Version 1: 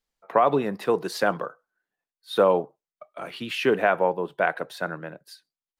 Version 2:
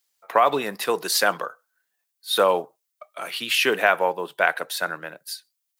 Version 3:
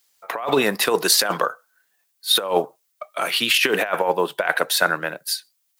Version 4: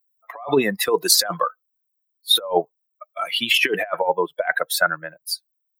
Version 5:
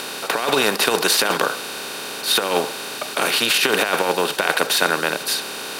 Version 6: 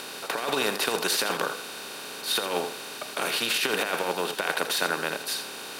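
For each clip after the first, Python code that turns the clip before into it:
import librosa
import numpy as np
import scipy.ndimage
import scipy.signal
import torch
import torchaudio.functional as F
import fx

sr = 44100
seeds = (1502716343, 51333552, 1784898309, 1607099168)

y1 = fx.tilt_eq(x, sr, slope=4.0)
y1 = F.gain(torch.from_numpy(y1), 3.0).numpy()
y2 = fx.over_compress(y1, sr, threshold_db=-23.0, ratio=-0.5)
y2 = F.gain(torch.from_numpy(y2), 5.5).numpy()
y3 = fx.bin_expand(y2, sr, power=2.0)
y3 = F.gain(torch.from_numpy(y3), 3.5).numpy()
y4 = fx.bin_compress(y3, sr, power=0.2)
y4 = F.gain(torch.from_numpy(y4), -7.0).numpy()
y5 = y4 + 10.0 ** (-10.5 / 20.0) * np.pad(y4, (int(82 * sr / 1000.0), 0))[:len(y4)]
y5 = F.gain(torch.from_numpy(y5), -8.5).numpy()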